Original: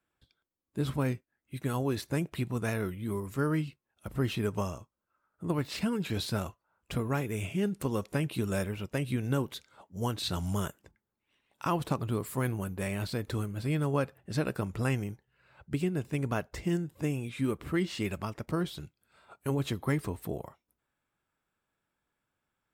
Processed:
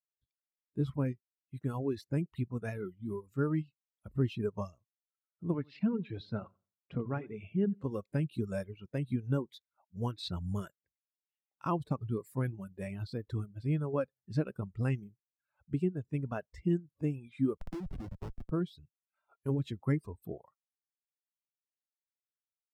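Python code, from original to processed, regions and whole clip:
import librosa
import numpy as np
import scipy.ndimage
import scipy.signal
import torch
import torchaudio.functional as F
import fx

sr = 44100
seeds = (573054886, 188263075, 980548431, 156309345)

y = fx.chain(x, sr, fx.bandpass_edges(low_hz=110.0, high_hz=3200.0),
    fx.echo_feedback(ms=89, feedback_pct=33, wet_db=-9), at=(5.54, 7.84))
y = fx.chain(y, sr, fx.schmitt(flips_db=-32.0),
    fx.band_squash(depth_pct=100), at=(17.57, 18.51))
y = fx.dereverb_blind(y, sr, rt60_s=1.0)
y = fx.dynamic_eq(y, sr, hz=5200.0, q=4.2, threshold_db=-58.0, ratio=4.0, max_db=3)
y = fx.spectral_expand(y, sr, expansion=1.5)
y = y * librosa.db_to_amplitude(-2.0)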